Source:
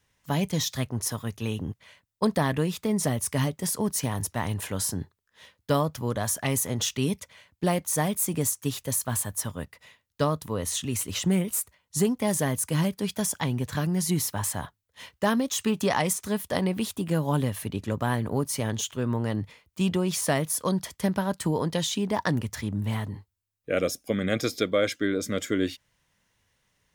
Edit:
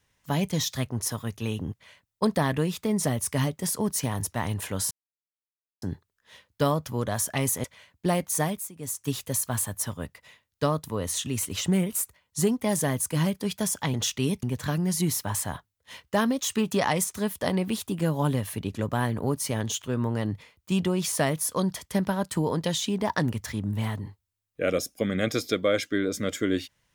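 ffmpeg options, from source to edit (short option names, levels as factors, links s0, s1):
-filter_complex "[0:a]asplit=7[s0][s1][s2][s3][s4][s5][s6];[s0]atrim=end=4.91,asetpts=PTS-STARTPTS,afade=t=out:st=4.906:d=0.004:c=hsin,apad=pad_dur=0.91[s7];[s1]atrim=start=4.91:end=6.732,asetpts=PTS-STARTPTS,afade=t=in:d=0.004:c=hsin[s8];[s2]atrim=start=7.218:end=8.3,asetpts=PTS-STARTPTS,afade=t=out:st=0.772:d=0.31:silence=0.125893[s9];[s3]atrim=start=8.3:end=8.35,asetpts=PTS-STARTPTS,volume=0.126[s10];[s4]atrim=start=8.35:end=13.522,asetpts=PTS-STARTPTS,afade=t=in:d=0.31:silence=0.125893[s11];[s5]atrim=start=6.728:end=7.222[s12];[s6]atrim=start=13.518[s13];[s7][s8]concat=n=2:v=0:a=1[s14];[s9][s10][s11]concat=n=3:v=0:a=1[s15];[s14][s15]acrossfade=d=0.004:c1=hsin:c2=hsin[s16];[s16][s12]acrossfade=d=0.004:c1=hsin:c2=hsin[s17];[s17][s13]acrossfade=d=0.004:c1=hsin:c2=hsin"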